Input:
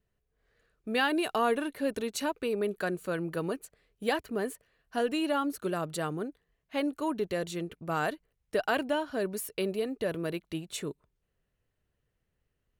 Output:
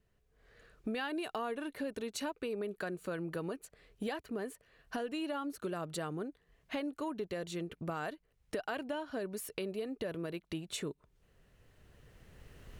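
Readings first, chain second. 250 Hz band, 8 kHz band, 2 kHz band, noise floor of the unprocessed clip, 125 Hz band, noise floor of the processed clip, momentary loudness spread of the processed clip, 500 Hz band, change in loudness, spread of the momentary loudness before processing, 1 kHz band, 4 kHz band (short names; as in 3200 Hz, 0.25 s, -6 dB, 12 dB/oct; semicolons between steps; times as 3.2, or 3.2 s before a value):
-6.5 dB, -5.5 dB, -8.5 dB, -81 dBFS, -5.0 dB, -74 dBFS, 7 LU, -8.0 dB, -7.5 dB, 10 LU, -9.0 dB, -7.0 dB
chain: recorder AGC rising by 10 dB/s; high shelf 11000 Hz -8 dB; compressor 2.5:1, threshold -45 dBFS, peak gain reduction 15 dB; gain +3.5 dB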